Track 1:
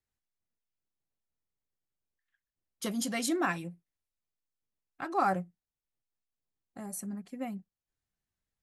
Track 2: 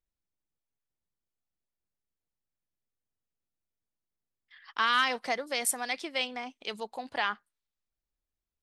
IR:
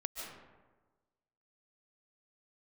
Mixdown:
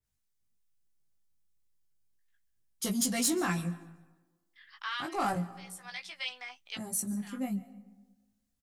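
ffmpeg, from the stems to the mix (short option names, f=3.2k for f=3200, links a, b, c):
-filter_complex "[0:a]bass=f=250:g=9,treble=f=4k:g=9,asoftclip=type=tanh:threshold=-21.5dB,adynamicequalizer=threshold=0.00562:dfrequency=3100:dqfactor=0.7:tfrequency=3100:tqfactor=0.7:attack=5:release=100:ratio=0.375:range=1.5:mode=boostabove:tftype=highshelf,volume=0.5dB,asplit=4[a][b][c][d];[b]volume=-14.5dB[e];[c]volume=-21.5dB[f];[1:a]highpass=1.2k,alimiter=limit=-22dB:level=0:latency=1:release=23,adelay=50,volume=1dB[g];[d]apad=whole_len=382437[h];[g][h]sidechaincompress=threshold=-50dB:ratio=8:attack=16:release=416[i];[2:a]atrim=start_sample=2205[j];[e][j]afir=irnorm=-1:irlink=0[k];[f]aecho=0:1:143|286|429|572|715:1|0.38|0.144|0.0549|0.0209[l];[a][i][k][l]amix=inputs=4:normalize=0,flanger=delay=16:depth=4:speed=0.32"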